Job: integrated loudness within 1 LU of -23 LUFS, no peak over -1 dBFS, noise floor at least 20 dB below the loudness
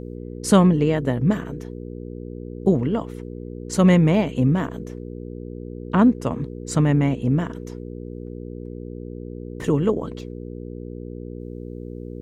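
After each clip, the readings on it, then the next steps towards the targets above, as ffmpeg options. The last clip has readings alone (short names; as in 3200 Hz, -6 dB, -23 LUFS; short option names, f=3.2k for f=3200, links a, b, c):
hum 60 Hz; harmonics up to 480 Hz; hum level -32 dBFS; loudness -20.5 LUFS; peak -4.0 dBFS; loudness target -23.0 LUFS
-> -af "bandreject=f=60:t=h:w=4,bandreject=f=120:t=h:w=4,bandreject=f=180:t=h:w=4,bandreject=f=240:t=h:w=4,bandreject=f=300:t=h:w=4,bandreject=f=360:t=h:w=4,bandreject=f=420:t=h:w=4,bandreject=f=480:t=h:w=4"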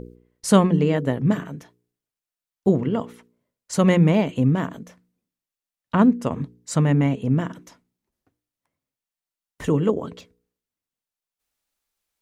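hum none; loudness -21.0 LUFS; peak -3.0 dBFS; loudness target -23.0 LUFS
-> -af "volume=-2dB"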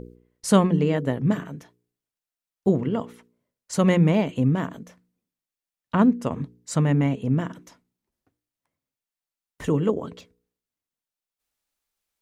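loudness -23.0 LUFS; peak -5.0 dBFS; noise floor -91 dBFS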